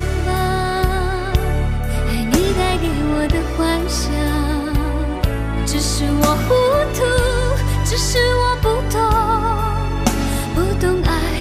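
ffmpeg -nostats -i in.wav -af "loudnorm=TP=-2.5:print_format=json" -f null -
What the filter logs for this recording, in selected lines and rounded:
"input_i" : "-18.1",
"input_tp" : "-3.5",
"input_lra" : "1.8",
"input_thresh" : "-28.1",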